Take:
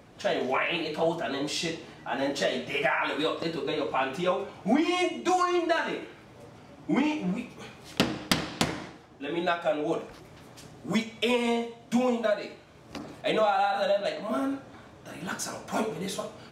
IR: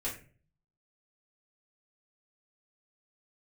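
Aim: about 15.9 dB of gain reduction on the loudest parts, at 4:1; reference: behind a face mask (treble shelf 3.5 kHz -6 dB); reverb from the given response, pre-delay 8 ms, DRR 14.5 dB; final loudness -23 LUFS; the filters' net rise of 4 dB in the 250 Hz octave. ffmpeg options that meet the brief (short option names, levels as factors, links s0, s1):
-filter_complex "[0:a]equalizer=f=250:t=o:g=5,acompressor=threshold=0.0158:ratio=4,asplit=2[s0][s1];[1:a]atrim=start_sample=2205,adelay=8[s2];[s1][s2]afir=irnorm=-1:irlink=0,volume=0.133[s3];[s0][s3]amix=inputs=2:normalize=0,highshelf=f=3500:g=-6,volume=6.31"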